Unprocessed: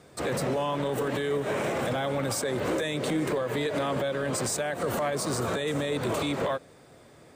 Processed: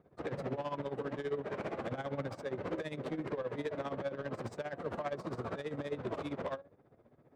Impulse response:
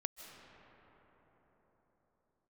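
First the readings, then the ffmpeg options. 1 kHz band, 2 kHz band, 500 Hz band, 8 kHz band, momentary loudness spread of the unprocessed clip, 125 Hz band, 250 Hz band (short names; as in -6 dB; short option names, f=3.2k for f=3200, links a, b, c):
-10.5 dB, -12.5 dB, -9.5 dB, under -25 dB, 1 LU, -10.0 dB, -10.0 dB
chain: -af "flanger=delay=5.1:depth=6.8:regen=81:speed=0.39:shape=triangular,tremolo=f=15:d=0.75,adynamicsmooth=sensitivity=5.5:basefreq=1.2k,volume=-2dB"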